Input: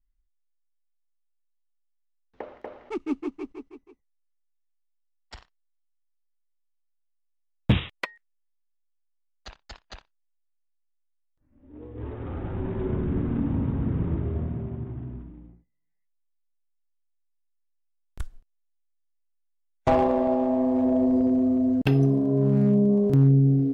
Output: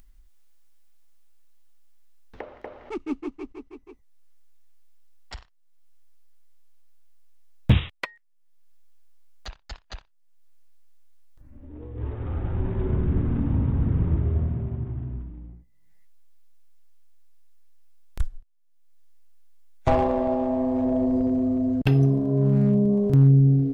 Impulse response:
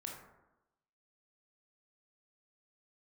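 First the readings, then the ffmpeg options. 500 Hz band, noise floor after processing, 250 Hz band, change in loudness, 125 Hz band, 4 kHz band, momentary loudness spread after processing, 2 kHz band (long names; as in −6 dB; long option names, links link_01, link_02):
−1.0 dB, −58 dBFS, −1.0 dB, +0.5 dB, +3.0 dB, +0.5 dB, 17 LU, 0.0 dB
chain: -af "asubboost=boost=2:cutoff=140,acompressor=mode=upward:threshold=-35dB:ratio=2.5"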